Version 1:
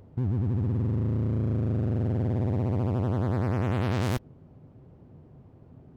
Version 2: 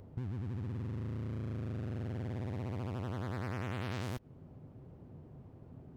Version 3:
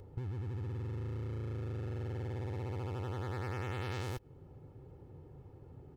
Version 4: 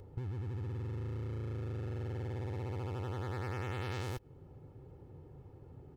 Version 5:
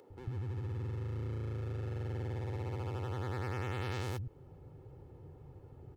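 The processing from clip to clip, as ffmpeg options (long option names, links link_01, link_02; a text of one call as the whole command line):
ffmpeg -i in.wav -filter_complex "[0:a]acrossover=split=1300[link_01][link_02];[link_01]acompressor=threshold=-36dB:ratio=6[link_03];[link_02]alimiter=level_in=6.5dB:limit=-24dB:level=0:latency=1:release=98,volume=-6.5dB[link_04];[link_03][link_04]amix=inputs=2:normalize=0,volume=-1.5dB" out.wav
ffmpeg -i in.wav -af "aecho=1:1:2.3:0.62,volume=-1dB" out.wav
ffmpeg -i in.wav -af anull out.wav
ffmpeg -i in.wav -filter_complex "[0:a]acrossover=split=230[link_01][link_02];[link_01]adelay=100[link_03];[link_03][link_02]amix=inputs=2:normalize=0,volume=1dB" out.wav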